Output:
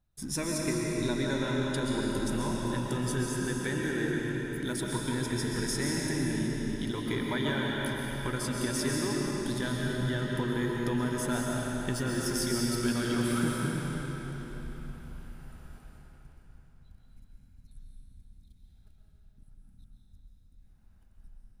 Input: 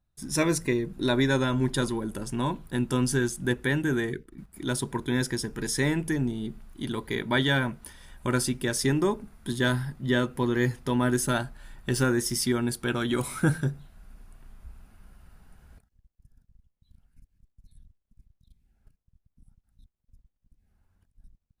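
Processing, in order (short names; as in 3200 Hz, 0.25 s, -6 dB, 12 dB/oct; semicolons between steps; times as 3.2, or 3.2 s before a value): compressor, threshold -31 dBFS, peak gain reduction 13 dB; digital reverb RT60 4.2 s, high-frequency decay 0.9×, pre-delay 90 ms, DRR -3 dB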